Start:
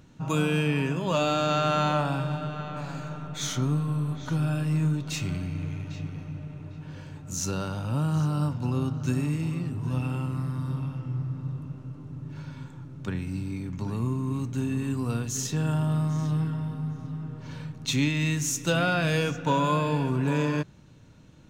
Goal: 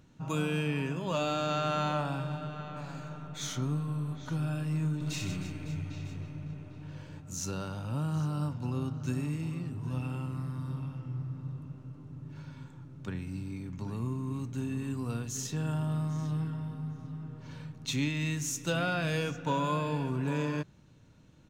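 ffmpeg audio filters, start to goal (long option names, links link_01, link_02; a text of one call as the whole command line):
ffmpeg -i in.wav -filter_complex "[0:a]asplit=3[link_01][link_02][link_03];[link_01]afade=type=out:start_time=5:duration=0.02[link_04];[link_02]aecho=1:1:60|156|309.6|555.4|948.6:0.631|0.398|0.251|0.158|0.1,afade=type=in:start_time=5:duration=0.02,afade=type=out:start_time=7.19:duration=0.02[link_05];[link_03]afade=type=in:start_time=7.19:duration=0.02[link_06];[link_04][link_05][link_06]amix=inputs=3:normalize=0,volume=-6dB" out.wav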